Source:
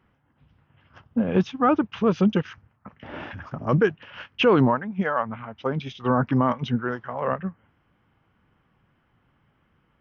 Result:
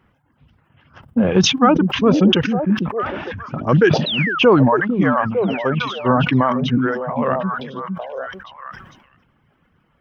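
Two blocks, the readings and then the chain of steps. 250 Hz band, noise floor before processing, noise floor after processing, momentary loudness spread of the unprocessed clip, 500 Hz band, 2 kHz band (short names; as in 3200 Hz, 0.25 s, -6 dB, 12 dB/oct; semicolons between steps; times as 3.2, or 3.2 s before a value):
+7.5 dB, -68 dBFS, -62 dBFS, 17 LU, +7.0 dB, +9.5 dB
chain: painted sound fall, 4.06–4.39, 1200–4100 Hz -28 dBFS; reverb removal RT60 1.1 s; on a send: delay with a stepping band-pass 0.453 s, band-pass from 210 Hz, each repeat 1.4 oct, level -3 dB; on the sum: sustainer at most 59 dB/s; gain +6 dB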